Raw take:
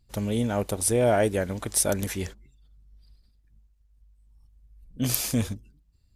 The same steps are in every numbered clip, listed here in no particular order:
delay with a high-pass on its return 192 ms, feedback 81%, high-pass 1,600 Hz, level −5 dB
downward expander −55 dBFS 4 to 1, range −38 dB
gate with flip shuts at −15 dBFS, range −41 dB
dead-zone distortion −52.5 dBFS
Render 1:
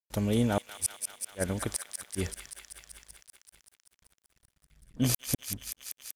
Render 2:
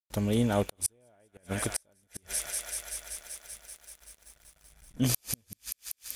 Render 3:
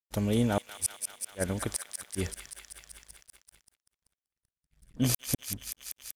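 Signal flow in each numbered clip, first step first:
downward expander, then gate with flip, then delay with a high-pass on its return, then dead-zone distortion
delay with a high-pass on its return, then downward expander, then dead-zone distortion, then gate with flip
gate with flip, then delay with a high-pass on its return, then dead-zone distortion, then downward expander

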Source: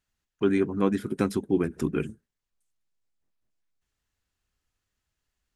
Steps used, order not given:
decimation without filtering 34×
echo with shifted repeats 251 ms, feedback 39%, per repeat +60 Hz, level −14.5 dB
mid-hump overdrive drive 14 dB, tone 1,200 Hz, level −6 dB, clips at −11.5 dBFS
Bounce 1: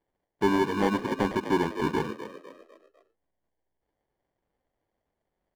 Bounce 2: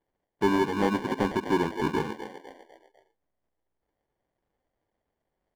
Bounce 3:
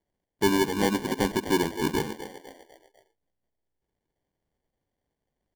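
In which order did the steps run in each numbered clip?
decimation without filtering, then echo with shifted repeats, then mid-hump overdrive
echo with shifted repeats, then decimation without filtering, then mid-hump overdrive
echo with shifted repeats, then mid-hump overdrive, then decimation without filtering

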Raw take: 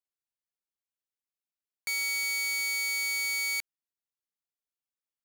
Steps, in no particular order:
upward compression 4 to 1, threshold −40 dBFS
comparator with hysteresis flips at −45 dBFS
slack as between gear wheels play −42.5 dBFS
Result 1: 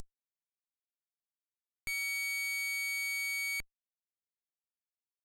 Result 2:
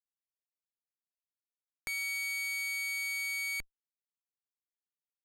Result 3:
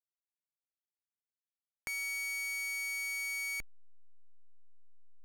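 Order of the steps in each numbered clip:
upward compression, then slack as between gear wheels, then comparator with hysteresis
slack as between gear wheels, then comparator with hysteresis, then upward compression
comparator with hysteresis, then upward compression, then slack as between gear wheels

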